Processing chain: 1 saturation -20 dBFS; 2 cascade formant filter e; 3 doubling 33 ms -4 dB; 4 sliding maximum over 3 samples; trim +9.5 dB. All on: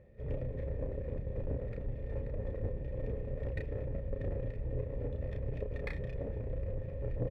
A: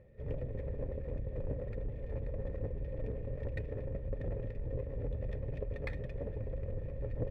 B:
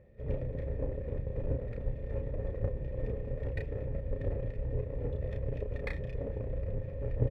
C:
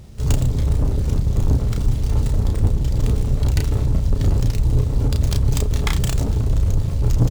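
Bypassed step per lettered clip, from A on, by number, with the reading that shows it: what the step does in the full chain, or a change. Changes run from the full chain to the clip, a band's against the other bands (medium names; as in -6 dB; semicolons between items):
3, loudness change -1.0 LU; 1, distortion -13 dB; 2, 500 Hz band -11.5 dB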